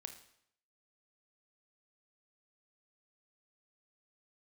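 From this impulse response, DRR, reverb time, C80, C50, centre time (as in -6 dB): 7.0 dB, 0.70 s, 13.0 dB, 9.5 dB, 13 ms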